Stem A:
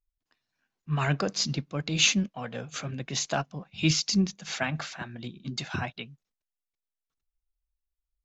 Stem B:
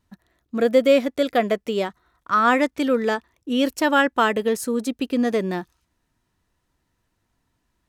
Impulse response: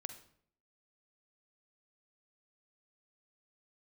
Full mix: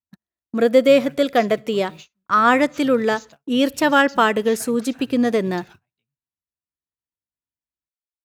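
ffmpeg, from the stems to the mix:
-filter_complex "[0:a]asubboost=boost=2.5:cutoff=130,acompressor=threshold=0.02:ratio=8,acrusher=bits=5:mode=log:mix=0:aa=0.000001,volume=0.422,asplit=2[s0][s1];[s1]volume=0.2[s2];[1:a]volume=1.19,asplit=2[s3][s4];[s4]volume=0.211[s5];[2:a]atrim=start_sample=2205[s6];[s2][s5]amix=inputs=2:normalize=0[s7];[s7][s6]afir=irnorm=-1:irlink=0[s8];[s0][s3][s8]amix=inputs=3:normalize=0,highpass=42,agate=range=0.0224:threshold=0.0141:ratio=16:detection=peak"

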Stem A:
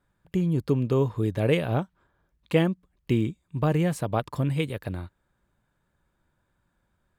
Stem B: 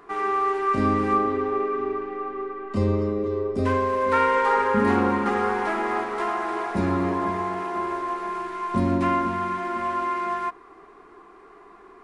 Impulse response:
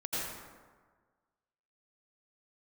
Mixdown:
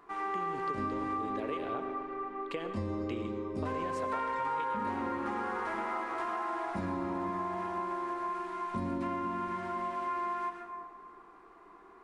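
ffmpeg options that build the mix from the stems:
-filter_complex "[0:a]acrossover=split=320 7500:gain=0.0891 1 0.0708[s0][s1][s2];[s0][s1][s2]amix=inputs=3:normalize=0,acompressor=threshold=0.0355:ratio=6,volume=0.531,asplit=2[s3][s4];[s4]volume=0.224[s5];[1:a]equalizer=f=950:w=4.4:g=4,bandreject=f=420:w=12,volume=0.266,asplit=2[s6][s7];[s7]volume=0.501[s8];[2:a]atrim=start_sample=2205[s9];[s5][s8]amix=inputs=2:normalize=0[s10];[s10][s9]afir=irnorm=-1:irlink=0[s11];[s3][s6][s11]amix=inputs=3:normalize=0,acompressor=threshold=0.0282:ratio=6"

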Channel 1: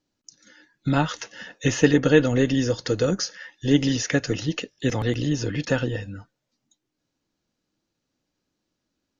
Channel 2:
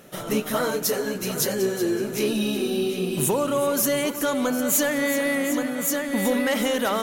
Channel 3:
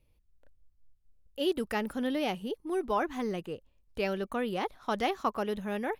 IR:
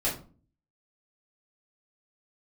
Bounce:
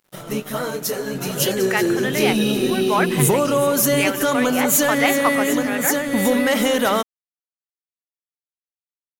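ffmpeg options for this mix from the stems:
-filter_complex "[0:a]aecho=1:1:4.2:0.46,adelay=250,volume=0.158[s0];[1:a]volume=0.891[s1];[2:a]highpass=490,equalizer=f=2000:t=o:w=1.1:g=9,volume=1.33,asplit=2[s2][s3];[s3]apad=whole_len=416715[s4];[s0][s4]sidechaincompress=threshold=0.0178:ratio=8:attack=16:release=247[s5];[s5][s1][s2]amix=inputs=3:normalize=0,equalizer=f=140:w=6.7:g=9,dynaudnorm=f=400:g=7:m=2.51,aeval=exprs='sgn(val(0))*max(abs(val(0))-0.00596,0)':c=same"

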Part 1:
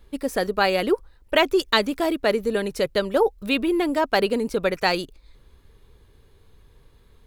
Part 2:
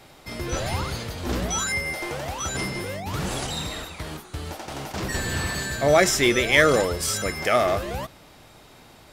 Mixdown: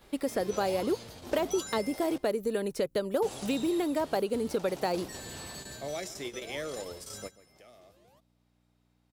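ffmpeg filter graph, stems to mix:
-filter_complex "[0:a]acrossover=split=880|6300[s0][s1][s2];[s0]acompressor=threshold=0.0398:ratio=4[s3];[s1]acompressor=threshold=0.00501:ratio=4[s4];[s2]acompressor=threshold=0.00398:ratio=4[s5];[s3][s4][s5]amix=inputs=3:normalize=0,volume=1.12,asplit=2[s6][s7];[1:a]acrossover=split=480|1100|2500[s8][s9][s10][s11];[s8]acompressor=threshold=0.0316:ratio=4[s12];[s9]acompressor=threshold=0.0355:ratio=4[s13];[s10]acompressor=threshold=0.00141:ratio=4[s14];[s11]acompressor=threshold=0.0355:ratio=4[s15];[s12][s13][s14][s15]amix=inputs=4:normalize=0,volume=0.299,asplit=3[s16][s17][s18];[s16]atrim=end=2.18,asetpts=PTS-STARTPTS,afade=t=out:st=2.176:d=0.004:c=hsin[s19];[s17]atrim=start=2.18:end=3.22,asetpts=PTS-STARTPTS,volume=0[s20];[s18]atrim=start=3.22,asetpts=PTS-STARTPTS,afade=t=in:d=0.004:c=hsin[s21];[s19][s20][s21]concat=n=3:v=0:a=1,asplit=2[s22][s23];[s23]volume=0.119[s24];[s7]apad=whole_len=402322[s25];[s22][s25]sidechaingate=range=0.0158:threshold=0.00251:ratio=16:detection=peak[s26];[s24]aecho=0:1:136:1[s27];[s6][s26][s27]amix=inputs=3:normalize=0,aeval=exprs='val(0)+0.000631*(sin(2*PI*60*n/s)+sin(2*PI*2*60*n/s)/2+sin(2*PI*3*60*n/s)/3+sin(2*PI*4*60*n/s)/4+sin(2*PI*5*60*n/s)/5)':c=same,highpass=f=160:p=1"

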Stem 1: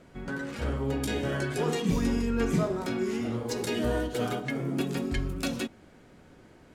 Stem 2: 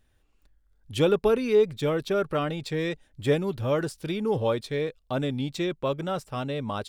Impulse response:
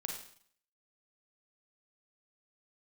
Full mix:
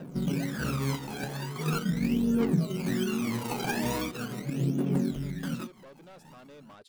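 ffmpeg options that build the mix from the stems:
-filter_complex "[0:a]acrusher=samples=20:mix=1:aa=0.000001:lfo=1:lforange=12:lforate=1.2,lowshelf=f=110:t=q:w=3:g=-12,aphaser=in_gain=1:out_gain=1:delay=1.3:decay=0.73:speed=0.41:type=triangular,volume=0.944[s0];[1:a]highpass=210,alimiter=limit=0.112:level=0:latency=1:release=464,asoftclip=type=tanh:threshold=0.02,volume=0.224,asplit=3[s1][s2][s3];[s1]atrim=end=2.08,asetpts=PTS-STARTPTS,afade=t=out:st=2.076:d=0.004:c=hsin[s4];[s2]atrim=start=2.08:end=4.11,asetpts=PTS-STARTPTS,volume=0[s5];[s3]atrim=start=4.11,asetpts=PTS-STARTPTS,afade=t=in:d=0.004:c=hsin[s6];[s4][s5][s6]concat=n=3:v=0:a=1,asplit=2[s7][s8];[s8]apad=whole_len=297631[s9];[s0][s9]sidechaincompress=threshold=0.00141:ratio=8:attack=12:release=122[s10];[s10][s7]amix=inputs=2:normalize=0,acompressor=threshold=0.0631:ratio=5"

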